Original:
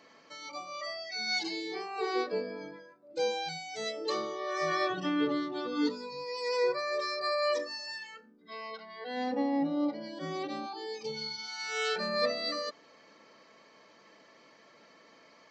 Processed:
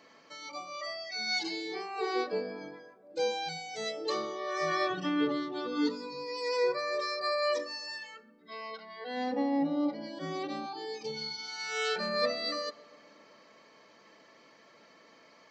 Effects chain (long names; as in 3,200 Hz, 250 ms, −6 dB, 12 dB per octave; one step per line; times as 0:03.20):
feedback echo with a low-pass in the loop 129 ms, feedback 74%, low-pass 1,900 Hz, level −20 dB